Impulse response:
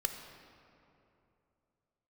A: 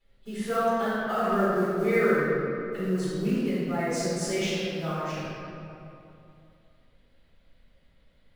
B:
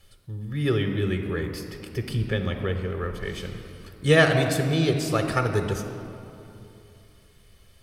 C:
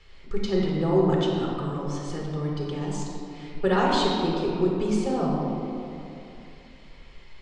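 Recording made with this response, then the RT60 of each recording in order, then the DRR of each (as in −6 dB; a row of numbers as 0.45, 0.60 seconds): B; 2.8, 2.8, 2.8 seconds; −12.5, 5.0, −3.0 decibels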